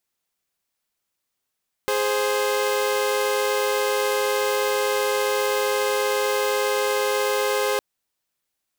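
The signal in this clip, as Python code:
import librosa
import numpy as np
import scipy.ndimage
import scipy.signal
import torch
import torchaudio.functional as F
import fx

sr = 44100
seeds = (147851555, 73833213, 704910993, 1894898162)

y = fx.chord(sr, length_s=5.91, notes=(68, 72), wave='saw', level_db=-20.5)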